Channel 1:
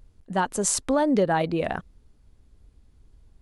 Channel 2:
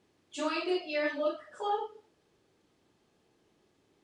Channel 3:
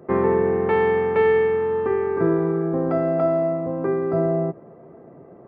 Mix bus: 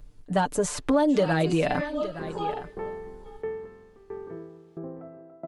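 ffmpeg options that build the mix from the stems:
-filter_complex "[0:a]aecho=1:1:6.8:0.75,acrossover=split=700|3100[a][b][c];[a]acompressor=threshold=-23dB:ratio=4[d];[b]acompressor=threshold=-32dB:ratio=4[e];[c]acompressor=threshold=-39dB:ratio=4[f];[d][e][f]amix=inputs=3:normalize=0,volume=2.5dB,asplit=3[g][h][i];[h]volume=-13.5dB[j];[1:a]adelay=750,volume=0.5dB,asplit=2[k][l];[l]volume=-22dB[m];[2:a]lowpass=f=1.1k:p=1,aeval=exprs='val(0)*pow(10,-23*if(lt(mod(1.5*n/s,1),2*abs(1.5)/1000),1-mod(1.5*n/s,1)/(2*abs(1.5)/1000),(mod(1.5*n/s,1)-2*abs(1.5)/1000)/(1-2*abs(1.5)/1000))/20)':c=same,adelay=2100,volume=-11dB,asplit=2[n][o];[o]volume=-15.5dB[p];[i]apad=whole_len=210878[q];[k][q]sidechaincompress=threshold=-28dB:ratio=8:attack=41:release=213[r];[j][m][p]amix=inputs=3:normalize=0,aecho=0:1:864:1[s];[g][r][n][s]amix=inputs=4:normalize=0"

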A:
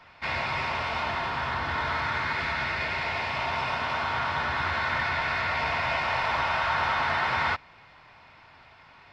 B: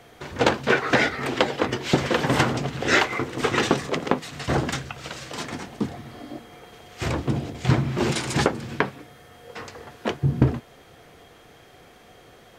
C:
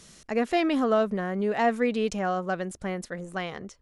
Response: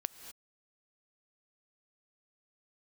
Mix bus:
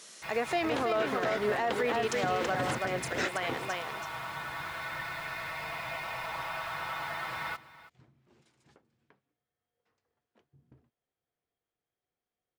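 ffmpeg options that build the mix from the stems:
-filter_complex "[0:a]aecho=1:1:6.1:0.65,acrusher=bits=5:mix=0:aa=0.5,volume=-12dB,asplit=2[a][b];[b]volume=-17.5dB[c];[1:a]adelay=300,volume=-9.5dB[d];[2:a]highpass=470,acontrast=46,volume=-3.5dB,asplit=3[e][f][g];[f]volume=-5dB[h];[g]apad=whole_len=568417[i];[d][i]sidechaingate=range=-33dB:threshold=-42dB:ratio=16:detection=peak[j];[c][h]amix=inputs=2:normalize=0,aecho=0:1:329:1[k];[a][j][e][k]amix=inputs=4:normalize=0,alimiter=limit=-20.5dB:level=0:latency=1:release=74"

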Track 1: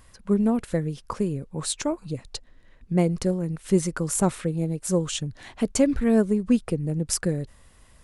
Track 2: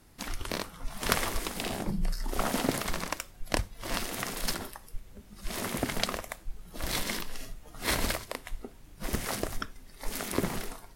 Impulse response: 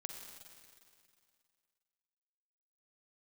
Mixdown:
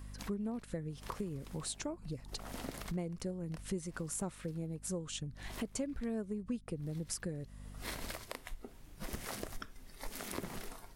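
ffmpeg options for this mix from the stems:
-filter_complex "[0:a]aeval=exprs='val(0)+0.00708*(sin(2*PI*50*n/s)+sin(2*PI*2*50*n/s)/2+sin(2*PI*3*50*n/s)/3+sin(2*PI*4*50*n/s)/4+sin(2*PI*5*50*n/s)/5)':c=same,volume=-4dB,asplit=2[a][b];[1:a]volume=-3dB[c];[b]apad=whole_len=483006[d];[c][d]sidechaincompress=threshold=-52dB:ratio=3:attack=8:release=357[e];[a][e]amix=inputs=2:normalize=0,acompressor=threshold=-40dB:ratio=3"

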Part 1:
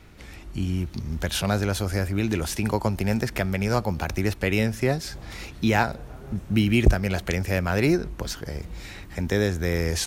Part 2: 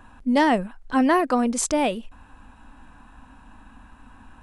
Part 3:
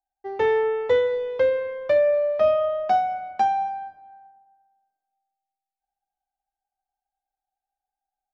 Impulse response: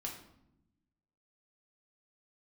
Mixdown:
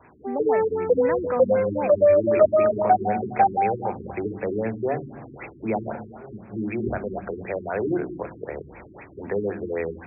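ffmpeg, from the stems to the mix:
-filter_complex "[0:a]dynaudnorm=f=190:g=9:m=5dB,volume=1.5dB,asplit=2[a][b];[b]volume=-12dB[c];[1:a]volume=-3dB,asplit=2[d][e];[2:a]dynaudnorm=f=110:g=21:m=3.5dB,volume=-1dB,asplit=2[f][g];[g]volume=-7dB[h];[e]apad=whole_len=443722[i];[a][i]sidechaincompress=threshold=-44dB:ratio=3:attack=29:release=104[j];[j][d]amix=inputs=2:normalize=0,acrossover=split=290|1500[k][l][m];[k]acompressor=threshold=-50dB:ratio=4[n];[m]acompressor=threshold=-27dB:ratio=4[o];[n][l][o]amix=inputs=3:normalize=0,alimiter=limit=-17.5dB:level=0:latency=1:release=11,volume=0dB[p];[3:a]atrim=start_sample=2205[q];[c][h]amix=inputs=2:normalize=0[r];[r][q]afir=irnorm=-1:irlink=0[s];[f][p][s]amix=inputs=3:normalize=0,highpass=130,lowpass=6.5k,afftfilt=real='re*lt(b*sr/1024,400*pow(2700/400,0.5+0.5*sin(2*PI*3.9*pts/sr)))':imag='im*lt(b*sr/1024,400*pow(2700/400,0.5+0.5*sin(2*PI*3.9*pts/sr)))':win_size=1024:overlap=0.75"

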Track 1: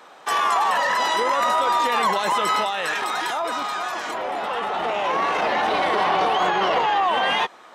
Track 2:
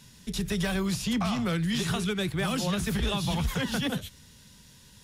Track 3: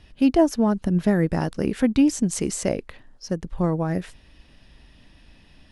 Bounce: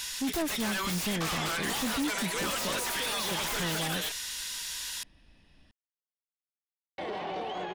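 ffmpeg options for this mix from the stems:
-filter_complex "[0:a]lowpass=f=2.5k:p=1,equalizer=f=1.2k:t=o:w=1.2:g=-13.5,adelay=1150,volume=-8dB,asplit=3[a][b][c];[a]atrim=end=4.12,asetpts=PTS-STARTPTS,afade=t=out:st=4.116:d=0.004:c=hsin[d];[b]atrim=start=4.12:end=6.98,asetpts=PTS-STARTPTS,volume=0[e];[c]atrim=start=6.98,asetpts=PTS-STARTPTS,afade=t=in:d=0.004:c=hsin[f];[d][e][f]concat=n=3:v=0:a=1[g];[1:a]highpass=1.3k,acompressor=threshold=-39dB:ratio=6,aeval=exprs='0.0422*sin(PI/2*5.62*val(0)/0.0422)':c=same,volume=2dB[h];[2:a]volume=-8.5dB[i];[g][h][i]amix=inputs=3:normalize=0,acrossover=split=2700[j][k];[k]acompressor=threshold=-29dB:ratio=4:attack=1:release=60[l];[j][l]amix=inputs=2:normalize=0,asoftclip=type=tanh:threshold=-26.5dB"

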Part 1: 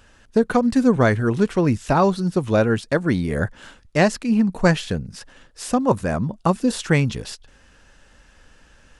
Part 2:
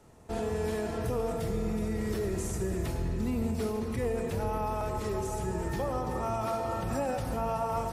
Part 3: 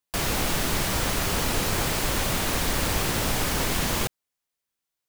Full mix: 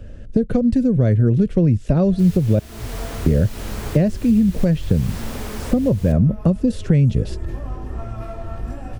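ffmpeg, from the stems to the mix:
-filter_complex "[0:a]lowshelf=f=720:t=q:w=3:g=8,volume=-0.5dB,asplit=3[a][b][c];[a]atrim=end=2.59,asetpts=PTS-STARTPTS,afade=t=out:st=2.586:d=0.004:c=hsin[d];[b]atrim=start=2.59:end=3.26,asetpts=PTS-STARTPTS,volume=0[e];[c]atrim=start=3.26,asetpts=PTS-STARTPTS,afade=t=in:d=0.004:c=hsin[f];[d][e][f]concat=n=3:v=0:a=1,asplit=2[g][h];[1:a]aecho=1:1:2.9:0.77,aeval=exprs='clip(val(0),-1,0.0473)':c=same,flanger=delay=17:depth=5.3:speed=1.1,adelay=1750,volume=-4dB[i];[2:a]adelay=2050,volume=-6dB[j];[h]apad=whole_len=314721[k];[j][k]sidechaincompress=threshold=-17dB:ratio=8:attack=16:release=414[l];[g][i]amix=inputs=2:normalize=0,bass=f=250:g=13,treble=f=4k:g=-6,alimiter=limit=-0.5dB:level=0:latency=1:release=487,volume=0dB[m];[l][m]amix=inputs=2:normalize=0,acrossover=split=130|1900[n][o][p];[n]acompressor=threshold=-18dB:ratio=4[q];[o]acompressor=threshold=-17dB:ratio=4[r];[p]acompressor=threshold=-37dB:ratio=4[s];[q][r][s]amix=inputs=3:normalize=0"

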